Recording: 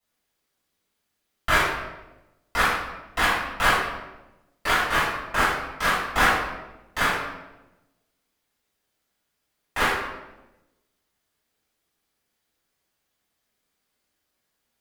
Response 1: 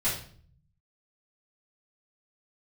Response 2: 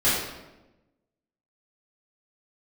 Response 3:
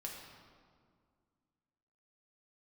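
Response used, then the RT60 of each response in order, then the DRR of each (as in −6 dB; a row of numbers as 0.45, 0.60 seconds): 2; 0.50, 1.0, 2.0 seconds; −11.5, −11.5, −1.5 decibels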